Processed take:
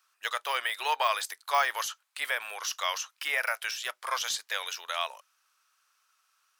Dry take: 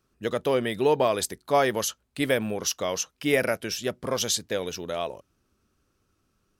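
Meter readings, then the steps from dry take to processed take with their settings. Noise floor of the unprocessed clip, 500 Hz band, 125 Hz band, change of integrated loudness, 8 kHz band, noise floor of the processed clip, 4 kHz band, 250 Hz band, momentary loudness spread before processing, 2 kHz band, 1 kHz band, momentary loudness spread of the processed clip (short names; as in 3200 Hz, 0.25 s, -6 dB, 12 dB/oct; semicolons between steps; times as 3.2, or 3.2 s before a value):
-73 dBFS, -14.5 dB, under -35 dB, -4.0 dB, -6.0 dB, -74 dBFS, -0.5 dB, under -30 dB, 8 LU, +1.5 dB, +0.5 dB, 7 LU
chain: HPF 1000 Hz 24 dB/oct; de-esser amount 95%; gain +6.5 dB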